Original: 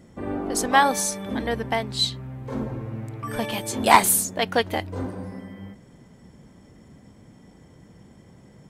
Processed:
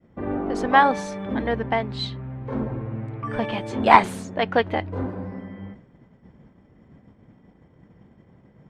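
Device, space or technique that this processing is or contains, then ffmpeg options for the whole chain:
hearing-loss simulation: -af "lowpass=2400,agate=range=-33dB:threshold=-44dB:ratio=3:detection=peak,volume=2dB"

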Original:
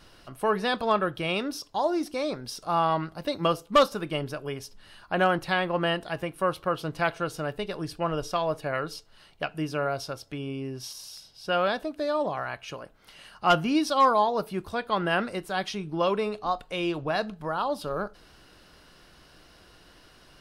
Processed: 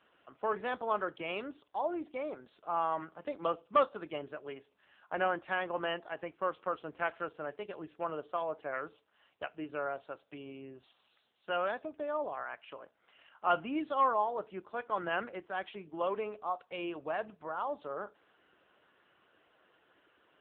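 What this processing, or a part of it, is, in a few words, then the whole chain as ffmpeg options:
telephone: -filter_complex "[0:a]asplit=3[link_01][link_02][link_03];[link_01]afade=type=out:start_time=4.61:duration=0.02[link_04];[link_02]lowpass=frequency=8300:width=0.5412,lowpass=frequency=8300:width=1.3066,afade=type=in:start_time=4.61:duration=0.02,afade=type=out:start_time=5.74:duration=0.02[link_05];[link_03]afade=type=in:start_time=5.74:duration=0.02[link_06];[link_04][link_05][link_06]amix=inputs=3:normalize=0,highpass=320,lowpass=3000,volume=-6.5dB" -ar 8000 -c:a libopencore_amrnb -b:a 6700

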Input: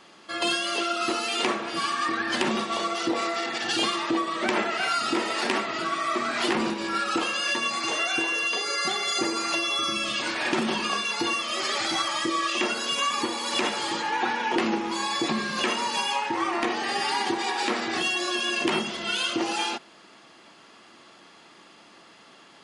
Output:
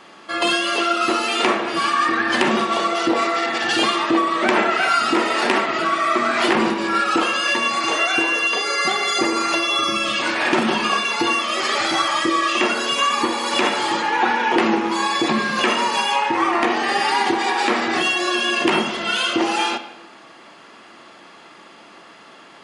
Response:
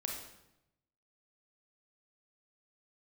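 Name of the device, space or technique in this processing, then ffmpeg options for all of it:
filtered reverb send: -filter_complex "[0:a]asplit=2[link_01][link_02];[link_02]highpass=frequency=360:poles=1,lowpass=3100[link_03];[1:a]atrim=start_sample=2205[link_04];[link_03][link_04]afir=irnorm=-1:irlink=0,volume=-1.5dB[link_05];[link_01][link_05]amix=inputs=2:normalize=0,volume=4dB"

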